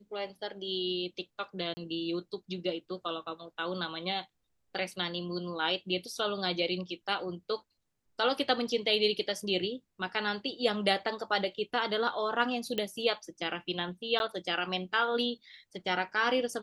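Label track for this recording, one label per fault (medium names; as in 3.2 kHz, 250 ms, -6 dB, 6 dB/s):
1.740000	1.770000	dropout 30 ms
12.780000	12.780000	pop -18 dBFS
14.190000	14.200000	dropout 11 ms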